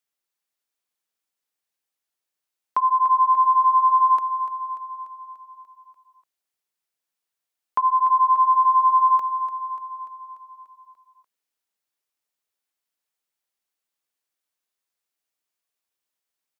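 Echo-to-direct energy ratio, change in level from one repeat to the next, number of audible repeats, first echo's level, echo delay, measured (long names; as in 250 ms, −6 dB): −8.5 dB, −4.5 dB, 6, −10.5 dB, 293 ms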